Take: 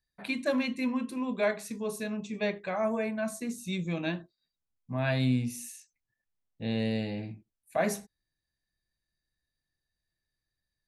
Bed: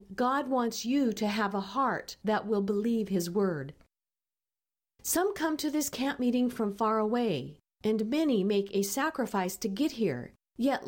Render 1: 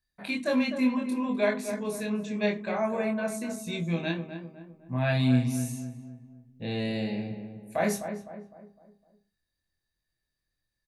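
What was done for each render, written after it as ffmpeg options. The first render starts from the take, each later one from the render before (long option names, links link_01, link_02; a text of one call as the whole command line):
ffmpeg -i in.wav -filter_complex "[0:a]asplit=2[link_01][link_02];[link_02]adelay=24,volume=-3dB[link_03];[link_01][link_03]amix=inputs=2:normalize=0,asplit=2[link_04][link_05];[link_05]adelay=254,lowpass=frequency=1400:poles=1,volume=-8dB,asplit=2[link_06][link_07];[link_07]adelay=254,lowpass=frequency=1400:poles=1,volume=0.45,asplit=2[link_08][link_09];[link_09]adelay=254,lowpass=frequency=1400:poles=1,volume=0.45,asplit=2[link_10][link_11];[link_11]adelay=254,lowpass=frequency=1400:poles=1,volume=0.45,asplit=2[link_12][link_13];[link_13]adelay=254,lowpass=frequency=1400:poles=1,volume=0.45[link_14];[link_04][link_06][link_08][link_10][link_12][link_14]amix=inputs=6:normalize=0" out.wav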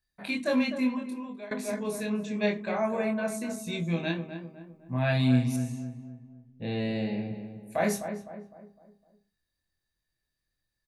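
ffmpeg -i in.wav -filter_complex "[0:a]asettb=1/sr,asplit=3[link_01][link_02][link_03];[link_01]atrim=end=5.564[link_04];[link_02]atrim=start=5.56:end=7.35,asetpts=PTS-STARTPTS,afade=type=in:duration=0.004:curve=qsin,afade=type=out:start_time=1.786:duration=0.004:curve=qsin,aemphasis=mode=reproduction:type=50fm[link_05];[link_03]atrim=start=7.346[link_06];[link_04][link_05]acrossfade=duration=0.004:curve1=hsin:curve2=qsin[link_07];[link_07][link_06]acrossfade=duration=0.004:curve1=qsin:curve2=hsin,asplit=2[link_08][link_09];[link_08]atrim=end=1.51,asetpts=PTS-STARTPTS,afade=type=out:start_time=0.64:duration=0.87:silence=0.0749894[link_10];[link_09]atrim=start=1.51,asetpts=PTS-STARTPTS,afade=type=in:duration=0.004:curve=hsin:silence=0.0749894[link_11];[link_10][link_11]concat=n=2:v=0:a=1" out.wav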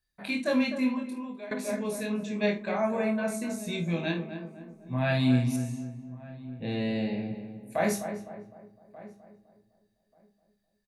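ffmpeg -i in.wav -filter_complex "[0:a]asplit=2[link_01][link_02];[link_02]adelay=50,volume=-12dB[link_03];[link_01][link_03]amix=inputs=2:normalize=0,asplit=2[link_04][link_05];[link_05]adelay=1185,lowpass=frequency=920:poles=1,volume=-18dB,asplit=2[link_06][link_07];[link_07]adelay=1185,lowpass=frequency=920:poles=1,volume=0.16[link_08];[link_04][link_06][link_08]amix=inputs=3:normalize=0" out.wav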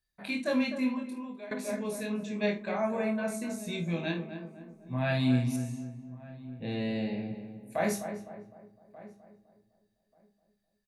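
ffmpeg -i in.wav -af "volume=-2.5dB" out.wav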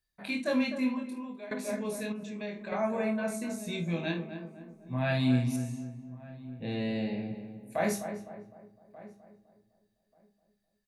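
ffmpeg -i in.wav -filter_complex "[0:a]asettb=1/sr,asplit=3[link_01][link_02][link_03];[link_01]atrim=end=2.124[link_04];[link_02]atrim=start=2.12:end=2.72,asetpts=PTS-STARTPTS,afade=type=in:duration=0.004:curve=qsin,afade=type=out:start_time=0.596:duration=0.004:curve=qsin,acompressor=threshold=-38dB:ratio=2.5:attack=3.2:release=140:knee=1:detection=peak[link_05];[link_03]atrim=start=2.716[link_06];[link_04][link_05]acrossfade=duration=0.004:curve1=hsin:curve2=qsin[link_07];[link_07][link_06]acrossfade=duration=0.004:curve1=qsin:curve2=hsin" out.wav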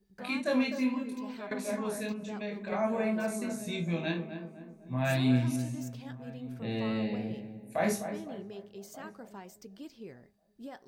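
ffmpeg -i in.wav -i bed.wav -filter_complex "[1:a]volume=-17dB[link_01];[0:a][link_01]amix=inputs=2:normalize=0" out.wav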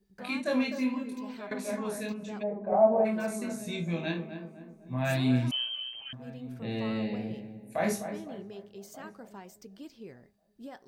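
ffmpeg -i in.wav -filter_complex "[0:a]asplit=3[link_01][link_02][link_03];[link_01]afade=type=out:start_time=2.42:duration=0.02[link_04];[link_02]lowpass=frequency=730:width_type=q:width=4.1,afade=type=in:start_time=2.42:duration=0.02,afade=type=out:start_time=3.04:duration=0.02[link_05];[link_03]afade=type=in:start_time=3.04:duration=0.02[link_06];[link_04][link_05][link_06]amix=inputs=3:normalize=0,asettb=1/sr,asplit=3[link_07][link_08][link_09];[link_07]atrim=end=5.514[link_10];[link_08]atrim=start=5.51:end=6.13,asetpts=PTS-STARTPTS,afade=type=in:duration=0.004:curve=qsin,afade=type=out:start_time=0.616:duration=0.004:curve=qsin,lowpass=frequency=2800:width_type=q:width=0.5098,lowpass=frequency=2800:width_type=q:width=0.6013,lowpass=frequency=2800:width_type=q:width=0.9,lowpass=frequency=2800:width_type=q:width=2.563,afreqshift=-3300[link_11];[link_09]atrim=start=6.126[link_12];[link_10][link_11]acrossfade=duration=0.004:curve1=hsin:curve2=qsin[link_13];[link_13][link_12]acrossfade=duration=0.004:curve1=qsin:curve2=hsin" out.wav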